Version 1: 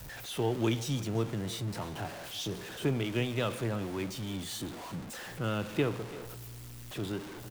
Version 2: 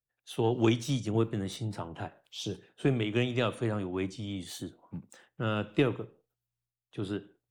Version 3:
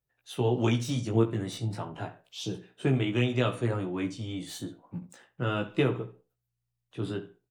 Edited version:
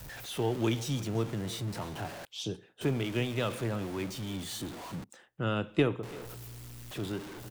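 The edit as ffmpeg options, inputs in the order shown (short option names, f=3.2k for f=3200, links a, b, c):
-filter_complex "[1:a]asplit=2[a][b];[0:a]asplit=3[c][d][e];[c]atrim=end=2.252[f];[a]atrim=start=2.248:end=2.812[g];[d]atrim=start=2.808:end=5.042[h];[b]atrim=start=5.038:end=6.032[i];[e]atrim=start=6.028[j];[f][g]acrossfade=d=0.004:c1=hsin:c2=hsin[k];[k][h]acrossfade=d=0.004:c1=hsin:c2=hsin[l];[l][i]acrossfade=d=0.004:c1=hsin:c2=hsin[m];[m][j]acrossfade=d=0.004:c1=hsin:c2=hsin"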